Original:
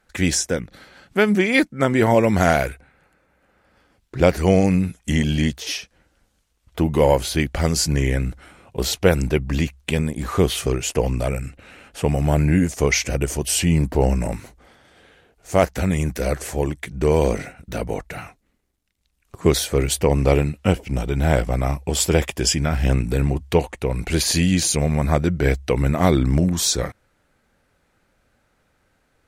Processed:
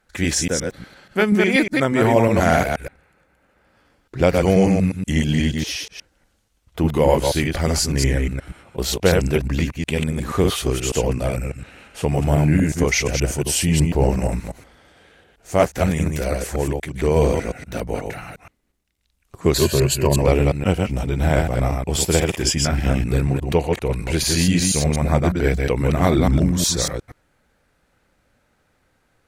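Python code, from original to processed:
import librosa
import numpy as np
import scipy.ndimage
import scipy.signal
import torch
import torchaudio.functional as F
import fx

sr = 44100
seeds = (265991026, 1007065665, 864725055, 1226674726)

y = fx.reverse_delay(x, sr, ms=120, wet_db=-3)
y = fx.ripple_eq(y, sr, per_octave=1.4, db=11, at=(19.54, 20.22))
y = y * librosa.db_to_amplitude(-1.0)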